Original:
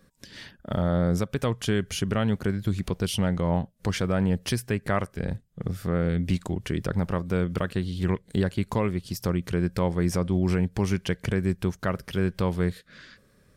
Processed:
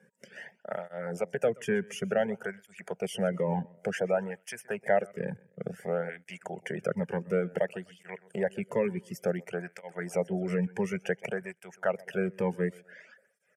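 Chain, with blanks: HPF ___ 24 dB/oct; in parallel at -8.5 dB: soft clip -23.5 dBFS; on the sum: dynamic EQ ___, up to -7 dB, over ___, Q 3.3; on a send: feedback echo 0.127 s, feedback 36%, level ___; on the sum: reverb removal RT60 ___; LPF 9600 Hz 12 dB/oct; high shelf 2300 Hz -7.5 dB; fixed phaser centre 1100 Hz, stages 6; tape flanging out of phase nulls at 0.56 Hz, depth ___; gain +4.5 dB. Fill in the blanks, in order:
170 Hz, 3900 Hz, -53 dBFS, -13.5 dB, 0.62 s, 1.6 ms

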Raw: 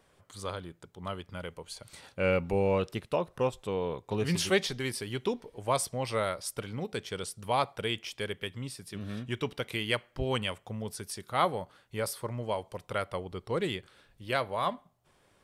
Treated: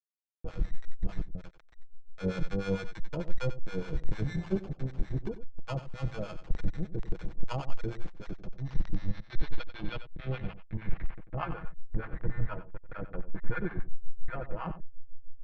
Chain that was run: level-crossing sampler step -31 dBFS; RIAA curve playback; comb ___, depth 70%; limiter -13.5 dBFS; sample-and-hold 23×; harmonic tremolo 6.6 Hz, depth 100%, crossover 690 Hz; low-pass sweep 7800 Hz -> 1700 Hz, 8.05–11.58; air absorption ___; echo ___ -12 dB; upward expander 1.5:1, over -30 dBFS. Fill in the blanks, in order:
6.1 ms, 220 m, 92 ms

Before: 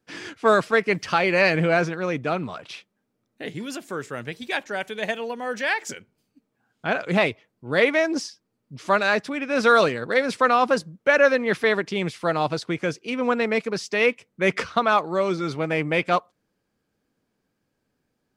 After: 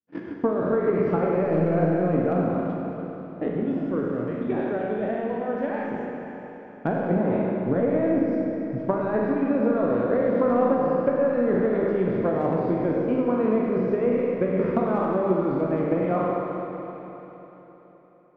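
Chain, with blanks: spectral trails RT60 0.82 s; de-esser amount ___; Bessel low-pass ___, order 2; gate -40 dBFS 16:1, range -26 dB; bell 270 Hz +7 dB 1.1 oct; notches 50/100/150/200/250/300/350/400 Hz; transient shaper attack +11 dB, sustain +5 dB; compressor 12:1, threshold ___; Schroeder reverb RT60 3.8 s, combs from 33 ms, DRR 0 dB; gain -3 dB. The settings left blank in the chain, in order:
80%, 630 Hz, -17 dBFS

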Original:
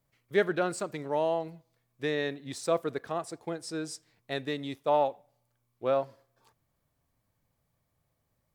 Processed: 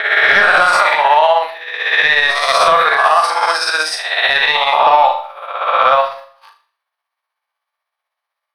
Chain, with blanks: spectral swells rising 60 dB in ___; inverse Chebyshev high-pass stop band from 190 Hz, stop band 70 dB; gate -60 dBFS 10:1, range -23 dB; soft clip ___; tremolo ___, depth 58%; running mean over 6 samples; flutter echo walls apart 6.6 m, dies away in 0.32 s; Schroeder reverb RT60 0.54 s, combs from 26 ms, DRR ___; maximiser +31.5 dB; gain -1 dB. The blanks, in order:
1.14 s, -26 dBFS, 16 Hz, 11 dB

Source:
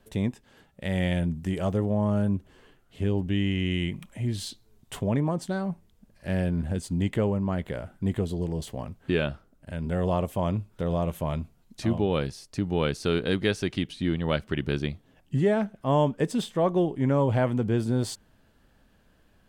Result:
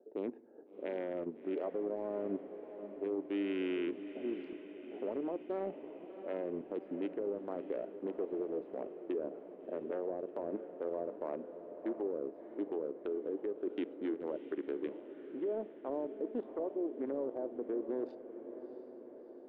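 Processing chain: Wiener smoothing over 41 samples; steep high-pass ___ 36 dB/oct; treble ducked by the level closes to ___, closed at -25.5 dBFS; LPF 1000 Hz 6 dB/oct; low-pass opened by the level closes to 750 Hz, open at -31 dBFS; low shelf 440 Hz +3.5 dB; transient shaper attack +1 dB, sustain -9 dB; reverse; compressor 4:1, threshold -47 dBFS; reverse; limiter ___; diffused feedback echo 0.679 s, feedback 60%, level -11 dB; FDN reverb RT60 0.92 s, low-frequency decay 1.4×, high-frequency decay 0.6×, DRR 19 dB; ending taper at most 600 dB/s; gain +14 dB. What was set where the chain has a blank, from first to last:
330 Hz, 440 Hz, -43 dBFS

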